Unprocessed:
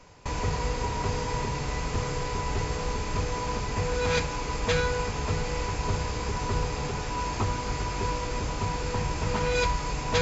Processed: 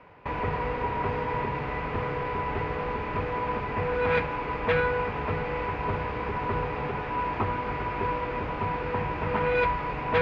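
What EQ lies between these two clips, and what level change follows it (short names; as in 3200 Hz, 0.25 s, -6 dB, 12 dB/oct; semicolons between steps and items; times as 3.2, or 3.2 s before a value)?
HPF 74 Hz 6 dB/oct; LPF 2500 Hz 24 dB/oct; low shelf 220 Hz -6 dB; +3.5 dB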